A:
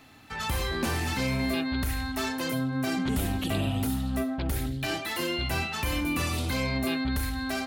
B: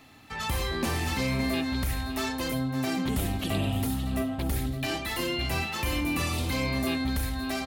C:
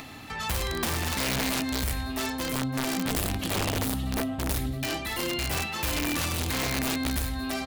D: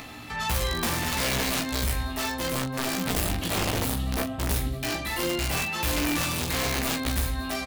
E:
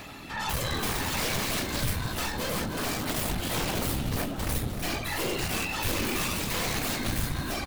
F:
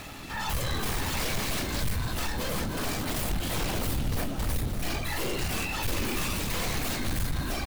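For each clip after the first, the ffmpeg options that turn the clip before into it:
-af "bandreject=f=1500:w=11,aecho=1:1:564:0.237"
-af "acompressor=mode=upward:threshold=0.0224:ratio=2.5,aeval=exprs='(mod(11.9*val(0)+1,2)-1)/11.9':c=same"
-af "aecho=1:1:17|42:0.631|0.355"
-filter_complex "[0:a]afftfilt=real='hypot(re,im)*cos(2*PI*random(0))':imag='hypot(re,im)*sin(2*PI*random(1))':win_size=512:overlap=0.75,aeval=exprs='0.119*(cos(1*acos(clip(val(0)/0.119,-1,1)))-cos(1*PI/2))+0.0335*(cos(4*acos(clip(val(0)/0.119,-1,1)))-cos(4*PI/2))+0.0266*(cos(5*acos(clip(val(0)/0.119,-1,1)))-cos(5*PI/2))':c=same,asplit=6[s0][s1][s2][s3][s4][s5];[s1]adelay=303,afreqshift=-74,volume=0.335[s6];[s2]adelay=606,afreqshift=-148,volume=0.157[s7];[s3]adelay=909,afreqshift=-222,volume=0.0741[s8];[s4]adelay=1212,afreqshift=-296,volume=0.0347[s9];[s5]adelay=1515,afreqshift=-370,volume=0.0164[s10];[s0][s6][s7][s8][s9][s10]amix=inputs=6:normalize=0,volume=0.794"
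-af "lowshelf=f=68:g=9.5,asoftclip=type=tanh:threshold=0.0841,acrusher=bits=6:mix=0:aa=0.5"

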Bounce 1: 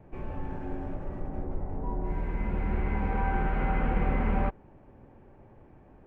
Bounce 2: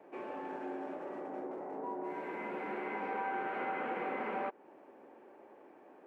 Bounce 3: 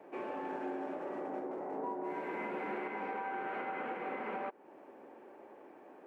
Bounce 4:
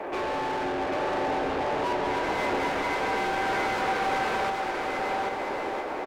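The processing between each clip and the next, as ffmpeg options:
-af "highpass=f=310:w=0.5412,highpass=f=310:w=1.3066,acompressor=threshold=0.01:ratio=2,volume=1.26"
-af "alimiter=level_in=2.51:limit=0.0631:level=0:latency=1:release=350,volume=0.398,volume=1.33"
-filter_complex "[0:a]asplit=2[s0][s1];[s1]highpass=f=720:p=1,volume=22.4,asoftclip=type=tanh:threshold=0.0335[s2];[s0][s2]amix=inputs=2:normalize=0,lowpass=f=3000:p=1,volume=0.501,aecho=1:1:790|1304|1637|1854|1995:0.631|0.398|0.251|0.158|0.1,volume=2"

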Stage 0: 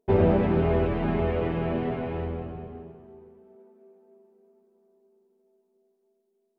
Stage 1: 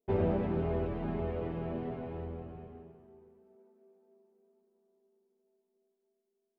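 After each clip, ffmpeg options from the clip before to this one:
-af "adynamicequalizer=threshold=0.00447:dfrequency=2300:dqfactor=0.76:tfrequency=2300:tqfactor=0.76:attack=5:release=100:ratio=0.375:range=3:mode=cutabove:tftype=bell,volume=0.355"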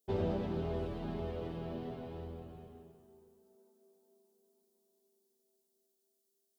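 -af "aexciter=amount=6.1:drive=4.8:freq=3300,volume=0.596"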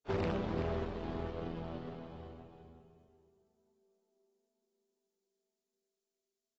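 -af "aeval=exprs='0.0668*(cos(1*acos(clip(val(0)/0.0668,-1,1)))-cos(1*PI/2))+0.0237*(cos(5*acos(clip(val(0)/0.0668,-1,1)))-cos(5*PI/2))+0.00841*(cos(6*acos(clip(val(0)/0.0668,-1,1)))-cos(6*PI/2))+0.0211*(cos(7*acos(clip(val(0)/0.0668,-1,1)))-cos(7*PI/2))+0.0075*(cos(8*acos(clip(val(0)/0.0668,-1,1)))-cos(8*PI/2))':c=same,aecho=1:1:381:0.376,volume=0.708" -ar 22050 -c:a aac -b:a 24k

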